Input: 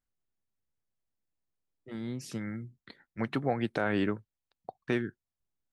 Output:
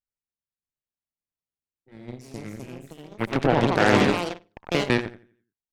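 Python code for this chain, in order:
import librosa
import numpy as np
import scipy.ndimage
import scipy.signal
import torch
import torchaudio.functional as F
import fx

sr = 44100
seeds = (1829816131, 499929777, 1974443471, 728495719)

y = fx.echo_feedback(x, sr, ms=86, feedback_pct=43, wet_db=-6.0)
y = fx.cheby_harmonics(y, sr, harmonics=(3, 5, 7, 8), levels_db=(-29, -28, -17, -28), full_scale_db=-13.0)
y = fx.echo_pitch(y, sr, ms=627, semitones=3, count=3, db_per_echo=-3.0)
y = y * librosa.db_to_amplitude(8.5)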